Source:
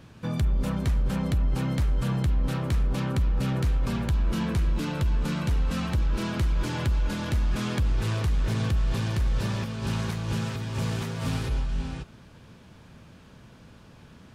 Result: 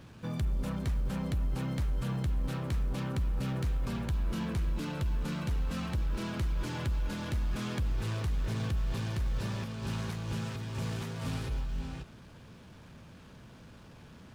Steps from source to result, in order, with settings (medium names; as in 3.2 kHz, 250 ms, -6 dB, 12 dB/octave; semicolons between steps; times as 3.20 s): companding laws mixed up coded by mu; trim -7.5 dB